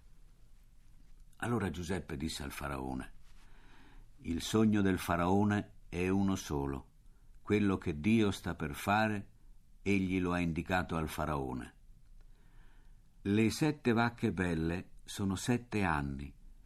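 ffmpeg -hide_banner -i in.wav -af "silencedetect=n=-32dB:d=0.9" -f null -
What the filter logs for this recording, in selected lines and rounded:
silence_start: 0.00
silence_end: 1.42 | silence_duration: 1.42
silence_start: 3.00
silence_end: 4.28 | silence_duration: 1.28
silence_start: 11.59
silence_end: 13.26 | silence_duration: 1.67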